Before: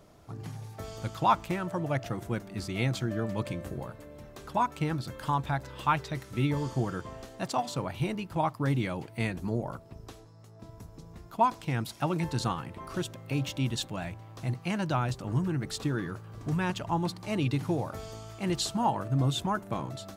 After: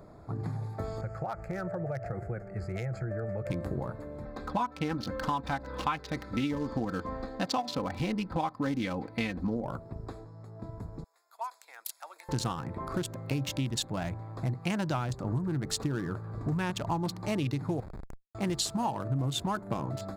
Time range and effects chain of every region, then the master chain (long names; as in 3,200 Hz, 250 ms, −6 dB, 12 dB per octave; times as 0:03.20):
0:01.01–0:03.50: phaser with its sweep stopped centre 1,000 Hz, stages 6 + downward compressor 8 to 1, threshold −35 dBFS + high-frequency loss of the air 53 metres
0:04.25–0:09.65: high shelf with overshoot 6,100 Hz −9 dB, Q 1.5 + comb filter 3.9 ms
0:11.04–0:12.29: high-pass filter 520 Hz 24 dB per octave + first difference
0:17.80–0:18.35: comparator with hysteresis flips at −33 dBFS + downward compressor, threshold −44 dBFS
whole clip: adaptive Wiener filter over 15 samples; high-shelf EQ 4,300 Hz +7.5 dB; downward compressor, threshold −34 dBFS; level +6 dB